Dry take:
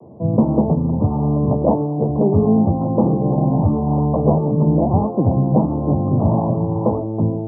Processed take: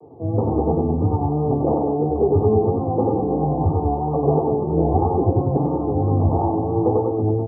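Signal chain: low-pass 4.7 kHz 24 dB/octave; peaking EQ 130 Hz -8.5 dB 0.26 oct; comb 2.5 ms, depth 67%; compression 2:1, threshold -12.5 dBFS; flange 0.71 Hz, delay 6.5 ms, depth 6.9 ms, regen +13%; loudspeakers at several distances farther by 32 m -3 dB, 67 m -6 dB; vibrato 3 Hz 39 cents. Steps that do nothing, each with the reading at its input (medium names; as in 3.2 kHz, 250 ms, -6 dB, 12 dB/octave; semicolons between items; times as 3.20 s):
low-pass 4.7 kHz: input has nothing above 1.1 kHz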